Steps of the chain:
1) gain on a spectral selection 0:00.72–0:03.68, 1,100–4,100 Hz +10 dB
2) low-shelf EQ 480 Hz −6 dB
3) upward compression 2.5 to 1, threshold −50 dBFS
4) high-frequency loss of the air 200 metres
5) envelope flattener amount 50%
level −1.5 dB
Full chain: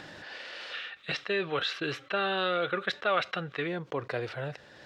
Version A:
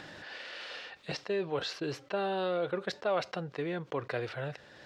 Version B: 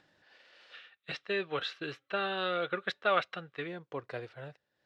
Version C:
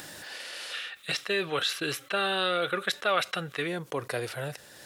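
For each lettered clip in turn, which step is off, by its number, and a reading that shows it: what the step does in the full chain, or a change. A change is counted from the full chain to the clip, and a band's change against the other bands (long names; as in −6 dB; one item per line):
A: 1, 2 kHz band −6.5 dB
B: 5, change in crest factor +3.0 dB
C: 4, 4 kHz band +3.5 dB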